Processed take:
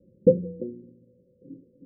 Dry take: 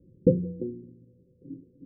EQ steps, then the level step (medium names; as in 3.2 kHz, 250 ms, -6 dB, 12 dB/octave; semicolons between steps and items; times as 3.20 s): resonant low-pass 570 Hz, resonance Q 7; peaking EQ 210 Hz +11 dB 0.3 oct; -6.5 dB